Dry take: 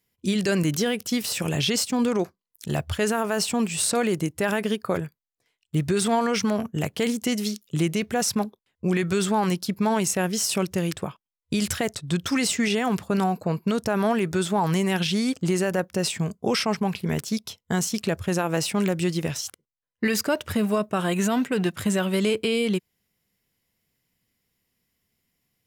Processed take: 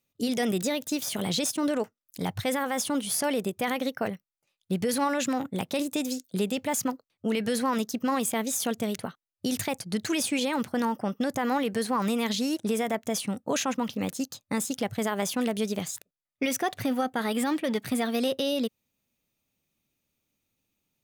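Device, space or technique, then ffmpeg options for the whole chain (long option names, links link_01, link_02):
nightcore: -af "asetrate=53802,aresample=44100,volume=-4dB"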